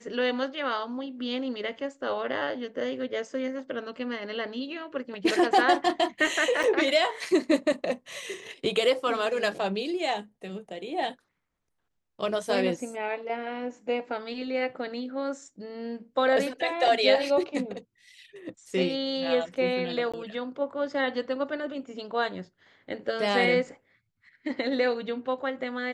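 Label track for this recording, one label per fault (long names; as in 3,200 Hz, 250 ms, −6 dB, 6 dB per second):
6.630000	6.640000	drop-out 5.8 ms
20.120000	20.140000	drop-out 16 ms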